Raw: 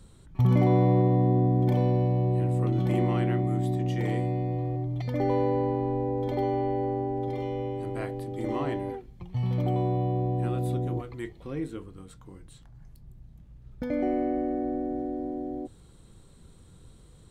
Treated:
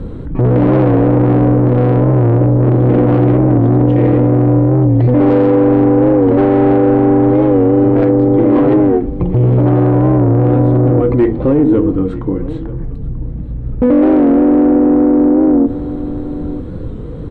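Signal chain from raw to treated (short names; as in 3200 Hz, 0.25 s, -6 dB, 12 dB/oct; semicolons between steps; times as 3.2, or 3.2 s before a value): LPF 1800 Hz 12 dB/oct; low shelf 380 Hz +6 dB; de-hum 46.08 Hz, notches 7; in parallel at +1 dB: compressor, threshold -27 dBFS, peak gain reduction 13.5 dB; on the sum: soft clip -22.5 dBFS, distortion -8 dB; small resonant body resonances 290/470 Hz, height 11 dB, ringing for 35 ms; on a send: echo 0.936 s -20 dB; on the sum: maximiser +18.5 dB; record warp 45 rpm, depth 100 cents; gain -3 dB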